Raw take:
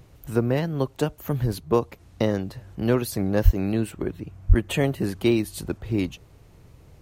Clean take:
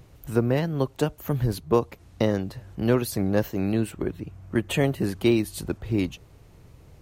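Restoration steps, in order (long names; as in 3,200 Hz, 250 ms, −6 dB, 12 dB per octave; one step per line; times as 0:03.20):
high-pass at the plosives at 0:03.44/0:04.48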